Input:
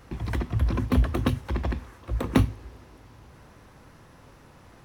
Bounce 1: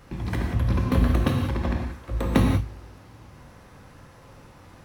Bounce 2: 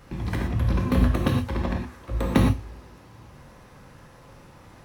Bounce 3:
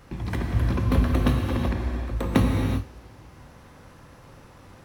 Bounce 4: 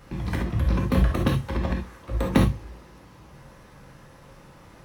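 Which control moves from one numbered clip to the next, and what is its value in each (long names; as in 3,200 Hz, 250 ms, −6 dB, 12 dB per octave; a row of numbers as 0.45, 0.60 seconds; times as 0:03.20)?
reverb whose tail is shaped and stops, gate: 210, 140, 420, 90 milliseconds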